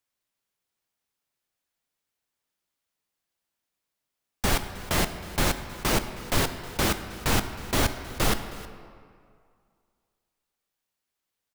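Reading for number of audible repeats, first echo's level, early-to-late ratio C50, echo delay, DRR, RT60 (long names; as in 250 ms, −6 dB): 1, −19.0 dB, 10.0 dB, 316 ms, 8.5 dB, 2.2 s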